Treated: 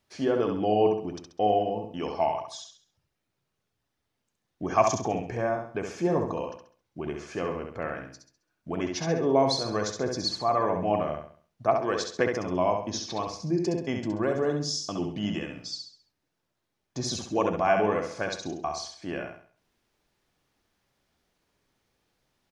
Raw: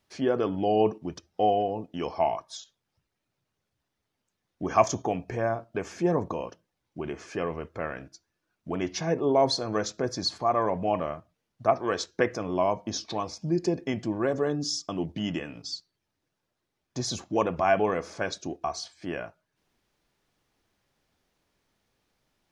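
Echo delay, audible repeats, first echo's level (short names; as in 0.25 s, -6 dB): 67 ms, 4, -5.0 dB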